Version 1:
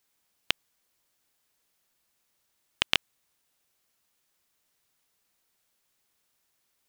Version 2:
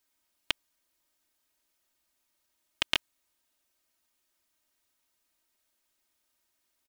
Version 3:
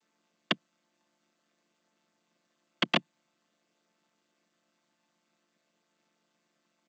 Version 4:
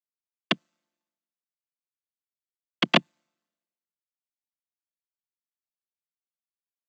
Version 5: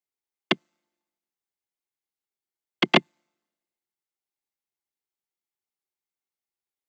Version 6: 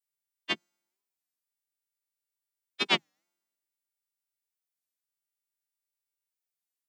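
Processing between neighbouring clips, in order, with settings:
comb 3.2 ms, depth 74%; gain -4.5 dB
chord vocoder minor triad, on D3; gain +3 dB
three-band expander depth 100%
small resonant body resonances 380/810/2100 Hz, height 9 dB, ringing for 35 ms
frequency quantiser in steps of 2 st; record warp 33 1/3 rpm, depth 250 cents; gain -9 dB

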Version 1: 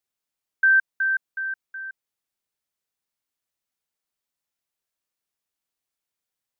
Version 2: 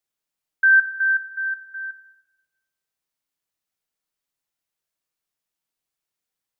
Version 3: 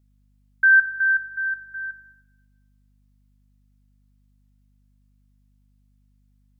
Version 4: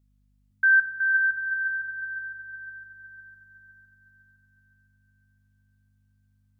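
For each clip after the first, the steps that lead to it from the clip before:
shoebox room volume 700 m³, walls mixed, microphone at 0.57 m
hum 50 Hz, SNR 34 dB
darkening echo 0.509 s, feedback 68%, low-pass 1500 Hz, level -3 dB; gain -4 dB

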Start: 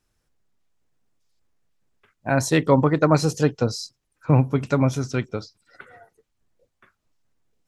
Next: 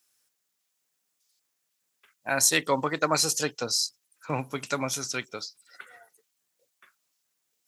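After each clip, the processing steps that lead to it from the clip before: HPF 100 Hz; tilt +4.5 dB/oct; gain -4 dB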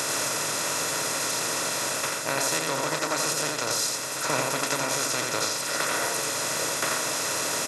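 per-bin compression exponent 0.2; vocal rider 0.5 s; echo 87 ms -3.5 dB; gain -7.5 dB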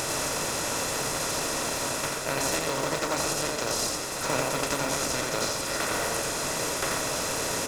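in parallel at -6.5 dB: sample-rate reducer 2100 Hz, jitter 20%; on the sum: reverb RT60 3.5 s, pre-delay 28 ms, DRR 8.5 dB; gain -3 dB

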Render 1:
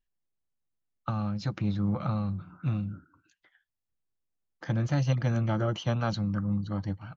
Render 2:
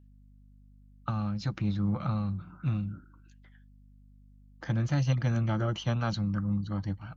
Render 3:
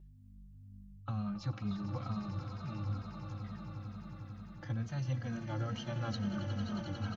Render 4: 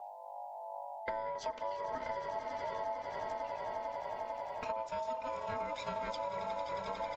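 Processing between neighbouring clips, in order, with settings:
hum 50 Hz, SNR 25 dB; dynamic EQ 530 Hz, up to -4 dB, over -45 dBFS, Q 0.91
reverse; compressor, threshold -36 dBFS, peak gain reduction 13.5 dB; reverse; swelling echo 90 ms, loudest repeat 8, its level -12.5 dB; endless flanger 2.9 ms -2.2 Hz; gain +3.5 dB
ring modulator 770 Hz; compressor 6:1, threshold -47 dBFS, peak gain reduction 13 dB; gain +11.5 dB

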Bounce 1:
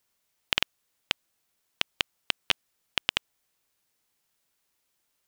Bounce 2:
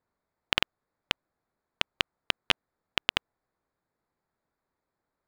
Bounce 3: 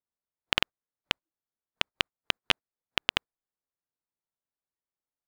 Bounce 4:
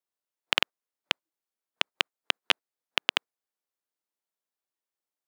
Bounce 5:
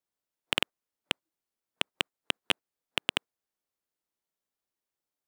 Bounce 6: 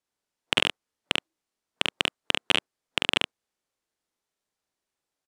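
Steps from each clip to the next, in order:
Wiener smoothing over 15 samples; high shelf 3400 Hz -7.5 dB; gain +3.5 dB
spectral noise reduction 18 dB
HPF 280 Hz 12 dB/oct; gain +1.5 dB
low shelf 380 Hz +7 dB; soft clip -7 dBFS, distortion -12 dB
LPF 9400 Hz 12 dB/oct; on a send: early reflections 44 ms -3 dB, 71 ms -6.5 dB; on the sum: gain +4 dB

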